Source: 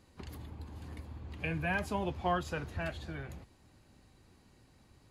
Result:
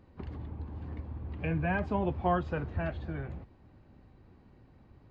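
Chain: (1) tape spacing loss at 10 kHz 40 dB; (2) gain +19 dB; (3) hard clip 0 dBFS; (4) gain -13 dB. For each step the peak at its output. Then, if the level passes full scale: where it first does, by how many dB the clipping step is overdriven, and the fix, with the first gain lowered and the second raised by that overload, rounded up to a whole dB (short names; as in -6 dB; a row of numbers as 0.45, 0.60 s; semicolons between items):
-22.5, -3.5, -3.5, -16.5 dBFS; no overload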